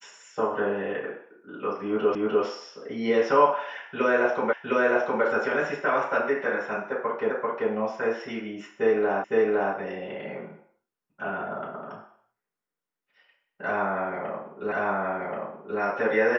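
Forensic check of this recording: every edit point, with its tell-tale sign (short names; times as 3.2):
2.15 repeat of the last 0.3 s
4.53 repeat of the last 0.71 s
7.3 repeat of the last 0.39 s
9.24 repeat of the last 0.51 s
14.72 repeat of the last 1.08 s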